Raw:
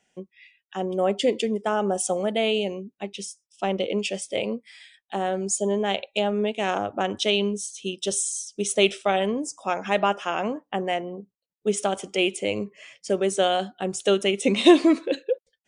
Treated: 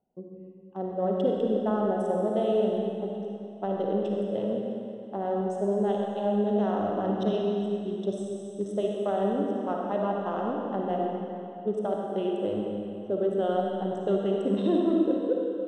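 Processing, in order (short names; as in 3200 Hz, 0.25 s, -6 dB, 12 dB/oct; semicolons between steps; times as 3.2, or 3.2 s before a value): Wiener smoothing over 25 samples; 6.9–7.33 resonant low shelf 120 Hz -13 dB, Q 3; limiter -15 dBFS, peak gain reduction 11 dB; running mean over 19 samples; reverb RT60 2.6 s, pre-delay 15 ms, DRR -1.5 dB; gain -3 dB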